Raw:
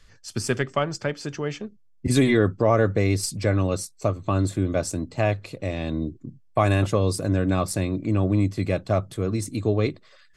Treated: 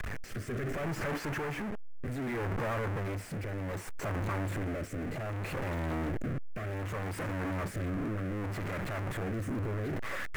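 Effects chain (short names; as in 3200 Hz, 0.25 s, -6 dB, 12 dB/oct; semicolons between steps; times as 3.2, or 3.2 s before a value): infinite clipping; rotary speaker horn 0.65 Hz; resonant high shelf 2800 Hz -12 dB, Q 1.5; gain -8.5 dB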